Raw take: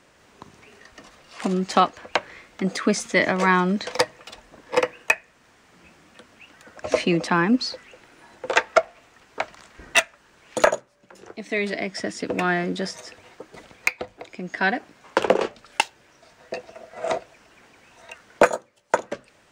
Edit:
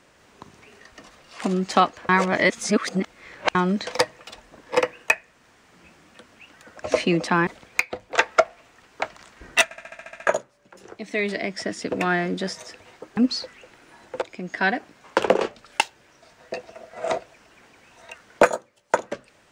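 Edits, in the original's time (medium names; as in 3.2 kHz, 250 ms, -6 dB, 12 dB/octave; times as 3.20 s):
2.09–3.55 s: reverse
7.47–8.52 s: swap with 13.55–14.22 s
10.02 s: stutter in place 0.07 s, 9 plays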